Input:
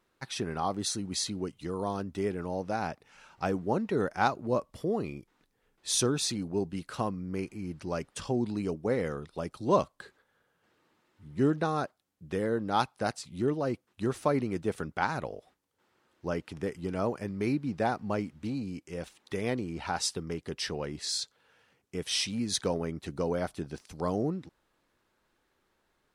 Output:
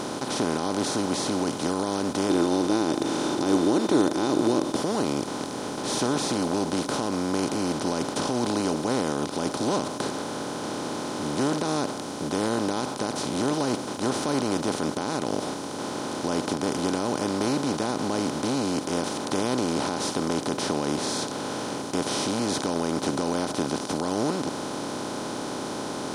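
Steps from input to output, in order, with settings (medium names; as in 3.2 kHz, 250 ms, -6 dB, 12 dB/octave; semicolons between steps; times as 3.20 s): spectral levelling over time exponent 0.2; peaking EQ 250 Hz +6 dB 1.2 oct; peak limiter -7 dBFS, peak gain reduction 7 dB; 2.29–4.76 s: small resonant body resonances 330/3600 Hz, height 11 dB; trim -7.5 dB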